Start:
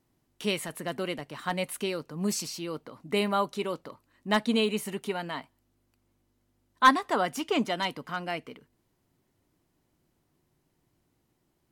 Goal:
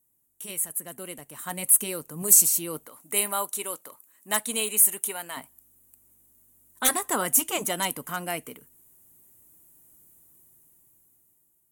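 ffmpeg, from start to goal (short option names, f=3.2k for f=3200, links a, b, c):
-filter_complex "[0:a]asettb=1/sr,asplit=3[a][b][c];[a]atrim=end=2.864[d];[b]atrim=start=2.86:end=5.37,asetpts=PTS-STARTPTS,afade=t=in:d=0.004:c=qsin,afade=t=out:st=2.506:d=0.004:c=qsin,highpass=f=780:p=1[e];[c]atrim=start=5.366[f];[d][e]acrossfade=d=0.004:c1=hsin:c2=qsin[g];[g][f]acrossfade=d=0.004:c1=qsin:c2=hsin,afftfilt=real='re*lt(hypot(re,im),0.398)':imag='im*lt(hypot(re,im),0.398)':win_size=1024:overlap=0.75,dynaudnorm=f=500:g=7:m=16dB,aexciter=amount=15.9:drive=5.2:freq=7.2k,volume=-11.5dB"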